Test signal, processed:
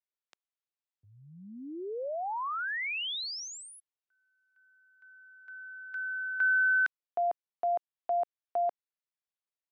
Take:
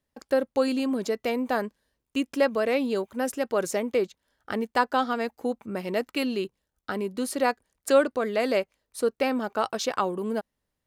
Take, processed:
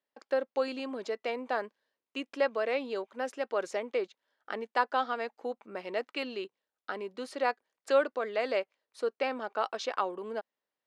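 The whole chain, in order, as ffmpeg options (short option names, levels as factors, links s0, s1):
-af "highpass=430,lowpass=4300,volume=0.631"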